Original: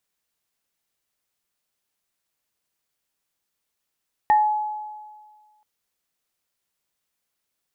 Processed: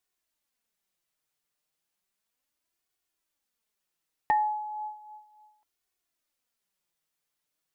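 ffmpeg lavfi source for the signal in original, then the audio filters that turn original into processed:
-f lavfi -i "aevalsrc='0.251*pow(10,-3*t/1.65)*sin(2*PI*849*t)+0.0668*pow(10,-3*t/0.26)*sin(2*PI*1830*t)':d=1.33:s=44100"
-af "flanger=delay=2.7:depth=4:regen=30:speed=0.34:shape=sinusoidal"

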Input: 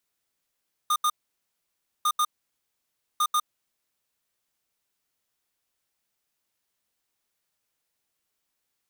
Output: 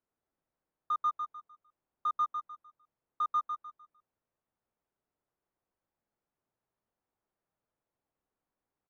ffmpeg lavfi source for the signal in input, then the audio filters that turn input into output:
-f lavfi -i "aevalsrc='0.075*(2*lt(mod(1220*t,1),0.5)-1)*clip(min(mod(mod(t,1.15),0.14),0.06-mod(mod(t,1.15),0.14))/0.005,0,1)*lt(mod(t,1.15),0.28)':d=3.45:s=44100"
-filter_complex "[0:a]lowpass=1k,asplit=2[a][b];[b]aecho=0:1:151|302|453|604:0.501|0.15|0.0451|0.0135[c];[a][c]amix=inputs=2:normalize=0"

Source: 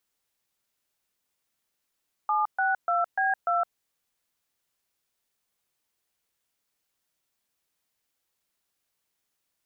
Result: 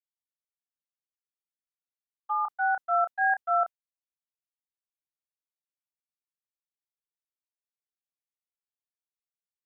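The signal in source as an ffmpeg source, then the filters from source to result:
-f lavfi -i "aevalsrc='0.0596*clip(min(mod(t,0.295),0.164-mod(t,0.295))/0.002,0,1)*(eq(floor(t/0.295),0)*(sin(2*PI*852*mod(t,0.295))+sin(2*PI*1209*mod(t,0.295)))+eq(floor(t/0.295),1)*(sin(2*PI*770*mod(t,0.295))+sin(2*PI*1477*mod(t,0.295)))+eq(floor(t/0.295),2)*(sin(2*PI*697*mod(t,0.295))+sin(2*PI*1336*mod(t,0.295)))+eq(floor(t/0.295),3)*(sin(2*PI*770*mod(t,0.295))+sin(2*PI*1633*mod(t,0.295)))+eq(floor(t/0.295),4)*(sin(2*PI*697*mod(t,0.295))+sin(2*PI*1336*mod(t,0.295))))':d=1.475:s=44100"
-filter_complex "[0:a]agate=range=-33dB:threshold=-23dB:ratio=3:detection=peak,asplit=2[a][b];[b]adelay=30,volume=-8dB[c];[a][c]amix=inputs=2:normalize=0"

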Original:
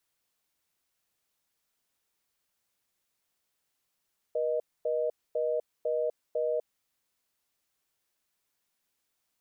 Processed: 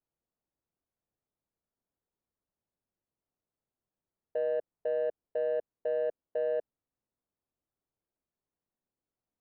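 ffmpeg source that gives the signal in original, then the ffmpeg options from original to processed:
-f lavfi -i "aevalsrc='0.0355*(sin(2*PI*480*t)+sin(2*PI*620*t))*clip(min(mod(t,0.5),0.25-mod(t,0.5))/0.005,0,1)':d=2.32:s=44100"
-af "adynamicsmooth=sensitivity=1.5:basefreq=740"

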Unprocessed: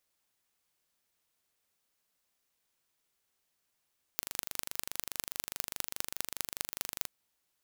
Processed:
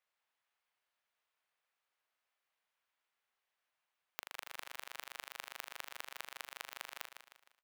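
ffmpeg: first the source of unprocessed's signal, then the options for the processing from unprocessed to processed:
-f lavfi -i "aevalsrc='0.631*eq(mod(n,1778),0)*(0.5+0.5*eq(mod(n,8890),0))':d=2.9:s=44100"
-filter_complex "[0:a]acrossover=split=570 3200:gain=0.126 1 0.158[a][b][c];[a][b][c]amix=inputs=3:normalize=0,asplit=2[d][e];[e]aecho=0:1:154|308|462|616|770:0.376|0.158|0.0663|0.0278|0.0117[f];[d][f]amix=inputs=2:normalize=0"

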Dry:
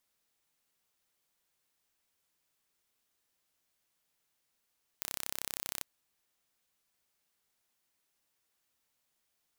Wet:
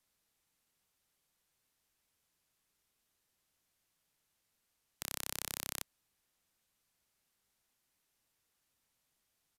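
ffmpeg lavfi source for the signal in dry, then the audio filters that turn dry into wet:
-f lavfi -i "aevalsrc='0.355*eq(mod(n,1345),0)':d=0.8:s=44100"
-filter_complex "[0:a]acrossover=split=210|1700|5300[a][b][c][d];[a]acontrast=36[e];[e][b][c][d]amix=inputs=4:normalize=0,aresample=32000,aresample=44100"

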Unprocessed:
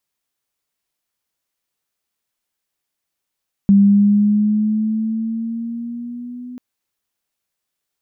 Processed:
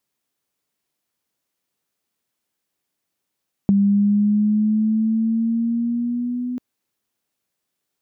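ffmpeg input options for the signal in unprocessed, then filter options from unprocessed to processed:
-f lavfi -i "aevalsrc='pow(10,(-6.5-23*t/2.89)/20)*sin(2*PI*198*2.89/(4*log(2)/12)*(exp(4*log(2)/12*t/2.89)-1))':d=2.89:s=44100"
-af "highpass=54,equalizer=f=250:w=0.57:g=6.5,acompressor=threshold=-19dB:ratio=3"

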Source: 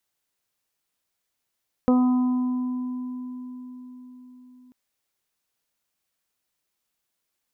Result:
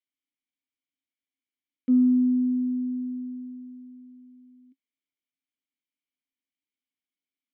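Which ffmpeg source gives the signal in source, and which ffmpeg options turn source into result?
-f lavfi -i "aevalsrc='0.178*pow(10,-3*t/4.98)*sin(2*PI*251*t)+0.126*pow(10,-3*t/0.28)*sin(2*PI*502*t)+0.0335*pow(10,-3*t/2.04)*sin(2*PI*753*t)+0.0282*pow(10,-3*t/3.79)*sin(2*PI*1004*t)+0.0224*pow(10,-3*t/1.25)*sin(2*PI*1255*t)':d=2.84:s=44100"
-filter_complex "[0:a]adynamicequalizer=threshold=0.0178:dfrequency=250:dqfactor=2.4:tfrequency=250:tqfactor=2.4:attack=5:release=100:ratio=0.375:range=2.5:mode=boostabove:tftype=bell,asplit=3[a][b][c];[a]bandpass=f=270:t=q:w=8,volume=0dB[d];[b]bandpass=f=2.29k:t=q:w=8,volume=-6dB[e];[c]bandpass=f=3.01k:t=q:w=8,volume=-9dB[f];[d][e][f]amix=inputs=3:normalize=0"

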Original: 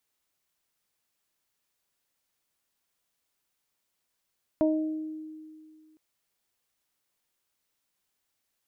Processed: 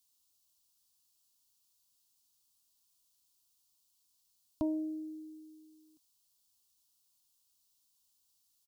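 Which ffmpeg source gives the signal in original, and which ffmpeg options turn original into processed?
-f lavfi -i "aevalsrc='0.0891*pow(10,-3*t/2.22)*sin(2*PI*312*t)+0.0794*pow(10,-3*t/0.69)*sin(2*PI*624*t)+0.0133*pow(10,-3*t/0.29)*sin(2*PI*936*t)':d=1.36:s=44100"
-af "firequalizer=gain_entry='entry(110,0);entry(190,-11);entry(270,-1);entry(400,-18);entry(1000,-4);entry(1900,-22);entry(2800,-3);entry(4400,6)':delay=0.05:min_phase=1"

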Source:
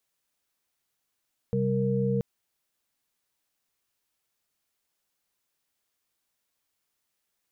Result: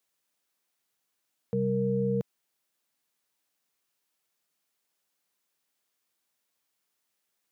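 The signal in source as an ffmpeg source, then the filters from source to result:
-f lavfi -i "aevalsrc='0.0422*(sin(2*PI*130.81*t)+sin(2*PI*196*t)+sin(2*PI*466.16*t))':d=0.68:s=44100"
-af "highpass=140"

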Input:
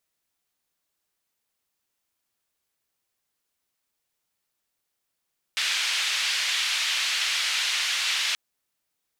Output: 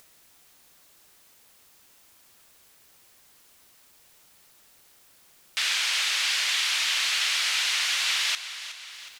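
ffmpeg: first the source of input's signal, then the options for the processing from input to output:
-f lavfi -i "anoisesrc=c=white:d=2.78:r=44100:seed=1,highpass=f=2500,lowpass=f=3200,volume=-8.4dB"
-af "acompressor=mode=upward:threshold=-39dB:ratio=2.5,aecho=1:1:367|734|1101|1468|1835|2202:0.224|0.123|0.0677|0.0372|0.0205|0.0113"

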